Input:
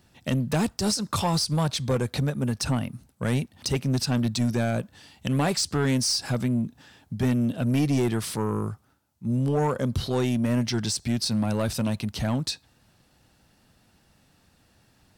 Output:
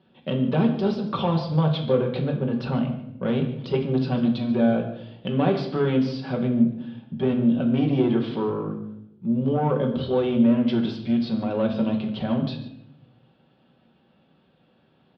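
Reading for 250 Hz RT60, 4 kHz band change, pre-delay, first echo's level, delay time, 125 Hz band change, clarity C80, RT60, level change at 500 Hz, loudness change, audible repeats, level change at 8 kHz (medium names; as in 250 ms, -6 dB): 1.2 s, -7.0 dB, 5 ms, -17.0 dB, 146 ms, -0.5 dB, 10.0 dB, 0.80 s, +5.0 dB, +2.5 dB, 1, under -30 dB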